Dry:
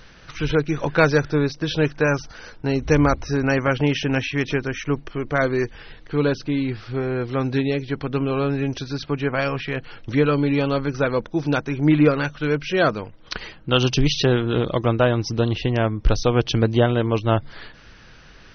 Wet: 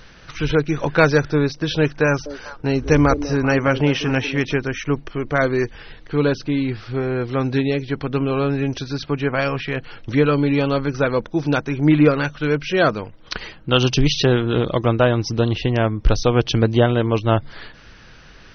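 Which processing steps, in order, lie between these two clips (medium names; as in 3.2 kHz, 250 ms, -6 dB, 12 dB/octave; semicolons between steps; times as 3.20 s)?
2.06–4.45 s: repeats whose band climbs or falls 197 ms, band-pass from 380 Hz, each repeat 1.4 oct, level -8 dB; trim +2 dB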